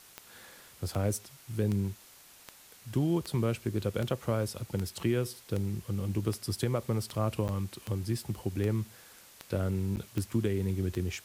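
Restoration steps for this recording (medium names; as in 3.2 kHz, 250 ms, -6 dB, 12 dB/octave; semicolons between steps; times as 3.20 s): de-click; interpolate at 7.48/9.96 s, 9.6 ms; noise reduction 22 dB, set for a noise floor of -55 dBFS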